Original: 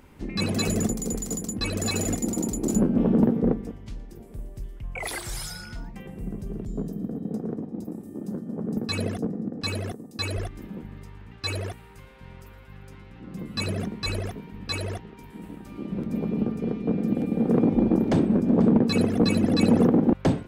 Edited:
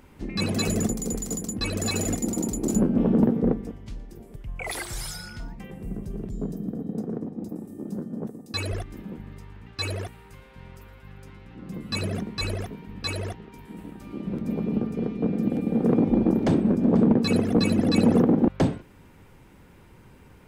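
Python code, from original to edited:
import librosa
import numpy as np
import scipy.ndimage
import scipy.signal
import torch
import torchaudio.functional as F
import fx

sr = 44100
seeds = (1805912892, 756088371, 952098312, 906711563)

y = fx.edit(x, sr, fx.cut(start_s=4.36, length_s=0.36),
    fx.cut(start_s=8.63, length_s=1.29), tone=tone)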